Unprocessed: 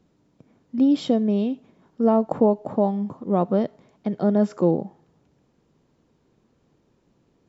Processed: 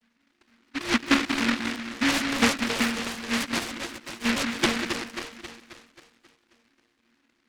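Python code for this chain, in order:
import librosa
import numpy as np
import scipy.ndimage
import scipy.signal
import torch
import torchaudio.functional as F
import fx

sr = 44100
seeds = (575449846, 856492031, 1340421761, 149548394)

p1 = fx.vocoder_arp(x, sr, chord='minor triad', root=58, every_ms=155)
p2 = fx.filter_lfo_lowpass(p1, sr, shape='saw_down', hz=4.7, low_hz=530.0, high_hz=6300.0, q=0.84)
p3 = p2 + fx.echo_split(p2, sr, split_hz=320.0, low_ms=188, high_ms=268, feedback_pct=52, wet_db=-5.0, dry=0)
p4 = fx.noise_mod_delay(p3, sr, seeds[0], noise_hz=1800.0, depth_ms=0.46)
y = p4 * 10.0 ** (-5.5 / 20.0)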